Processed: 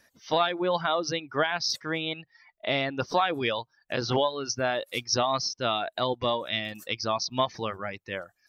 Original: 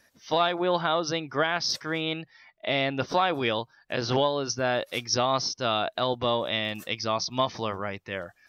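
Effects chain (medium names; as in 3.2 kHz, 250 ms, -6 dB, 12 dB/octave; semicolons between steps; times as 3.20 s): reverb removal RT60 1 s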